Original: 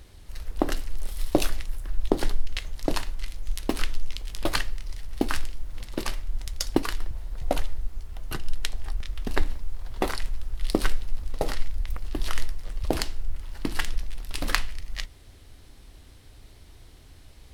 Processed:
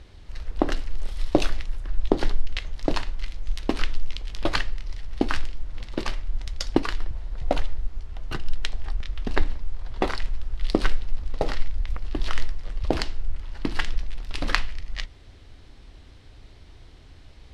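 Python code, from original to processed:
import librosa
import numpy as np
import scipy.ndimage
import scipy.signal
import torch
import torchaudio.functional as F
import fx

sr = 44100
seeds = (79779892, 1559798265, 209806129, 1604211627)

y = scipy.signal.sosfilt(scipy.signal.butter(2, 4900.0, 'lowpass', fs=sr, output='sos'), x)
y = y * 10.0 ** (2.0 / 20.0)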